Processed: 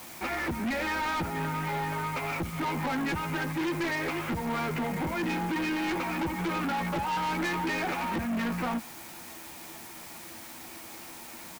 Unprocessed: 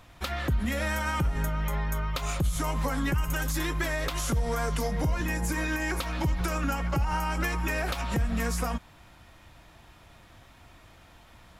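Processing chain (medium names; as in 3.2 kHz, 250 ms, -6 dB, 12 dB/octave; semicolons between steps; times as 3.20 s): cabinet simulation 180–2400 Hz, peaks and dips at 220 Hz +9 dB, 340 Hz +9 dB, 850 Hz +7 dB, 2.3 kHz +9 dB; doubling 12 ms -2.5 dB; in parallel at -10 dB: word length cut 6-bit, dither triangular; on the sum: saturation -27.5 dBFS, distortion -7 dB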